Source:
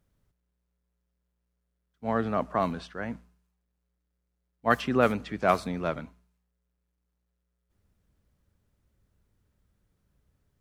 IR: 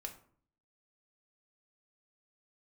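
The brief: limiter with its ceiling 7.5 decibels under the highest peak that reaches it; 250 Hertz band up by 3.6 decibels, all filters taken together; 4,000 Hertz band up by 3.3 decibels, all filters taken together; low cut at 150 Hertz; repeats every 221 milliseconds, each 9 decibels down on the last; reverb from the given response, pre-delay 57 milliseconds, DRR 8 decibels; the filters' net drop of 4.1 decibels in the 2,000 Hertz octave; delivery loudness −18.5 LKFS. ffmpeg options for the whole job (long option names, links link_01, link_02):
-filter_complex "[0:a]highpass=150,equalizer=frequency=250:width_type=o:gain=5,equalizer=frequency=2000:width_type=o:gain=-7.5,equalizer=frequency=4000:width_type=o:gain=7,alimiter=limit=-16dB:level=0:latency=1,aecho=1:1:221|442|663|884:0.355|0.124|0.0435|0.0152,asplit=2[link_01][link_02];[1:a]atrim=start_sample=2205,adelay=57[link_03];[link_02][link_03]afir=irnorm=-1:irlink=0,volume=-5dB[link_04];[link_01][link_04]amix=inputs=2:normalize=0,volume=11.5dB"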